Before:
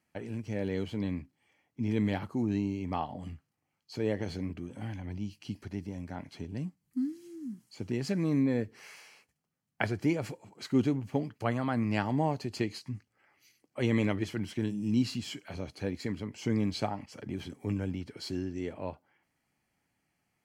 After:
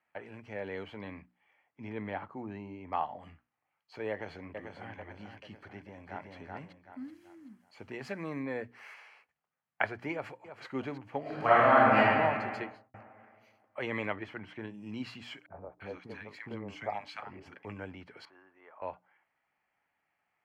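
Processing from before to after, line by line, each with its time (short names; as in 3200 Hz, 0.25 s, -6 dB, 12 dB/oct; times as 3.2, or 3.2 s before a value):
1.89–2.93 high shelf 2300 Hz -9.5 dB
4.1–4.95 echo throw 0.44 s, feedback 50%, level -6 dB
5.68–6.34 echo throw 0.38 s, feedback 35%, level -2 dB
7.04–8.94 high shelf 8200 Hz +8.5 dB
10.12–10.65 echo throw 0.32 s, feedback 40%, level -10.5 dB
11.21–11.98 reverb throw, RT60 2.1 s, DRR -12 dB
12.54–12.94 studio fade out
14.16–14.74 high shelf 4500 Hz -10 dB
15.46–17.65 three bands offset in time lows, mids, highs 40/340 ms, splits 310/1100 Hz
18.25–18.82 band-pass 1100 Hz, Q 2.8
whole clip: three-band isolator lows -17 dB, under 580 Hz, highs -22 dB, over 2600 Hz; notches 60/120/180/240/300 Hz; gain +4 dB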